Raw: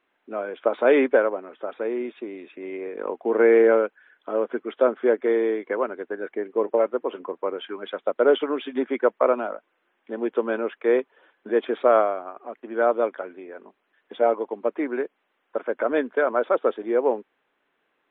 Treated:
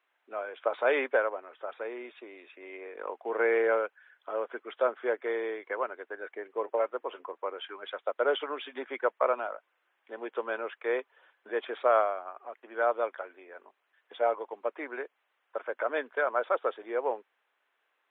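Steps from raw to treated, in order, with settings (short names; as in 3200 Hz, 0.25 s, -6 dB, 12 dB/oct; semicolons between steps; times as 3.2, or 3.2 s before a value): HPF 660 Hz 12 dB/oct; gain -3 dB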